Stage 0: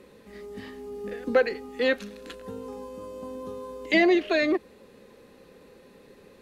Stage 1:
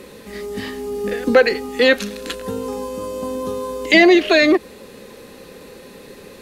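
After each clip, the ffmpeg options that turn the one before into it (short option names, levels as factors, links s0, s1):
-filter_complex "[0:a]highshelf=f=3300:g=7.5,asplit=2[s0][s1];[s1]alimiter=limit=0.1:level=0:latency=1:release=83,volume=1.12[s2];[s0][s2]amix=inputs=2:normalize=0,volume=1.88"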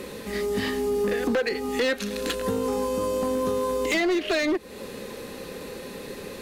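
-af "acompressor=threshold=0.0631:ratio=4,asoftclip=type=hard:threshold=0.0794,volume=1.33"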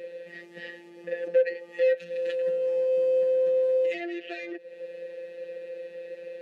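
-filter_complex "[0:a]afftfilt=real='hypot(re,im)*cos(PI*b)':imag='0':win_size=1024:overlap=0.75,asplit=3[s0][s1][s2];[s0]bandpass=f=530:t=q:w=8,volume=1[s3];[s1]bandpass=f=1840:t=q:w=8,volume=0.501[s4];[s2]bandpass=f=2480:t=q:w=8,volume=0.355[s5];[s3][s4][s5]amix=inputs=3:normalize=0,volume=1.88"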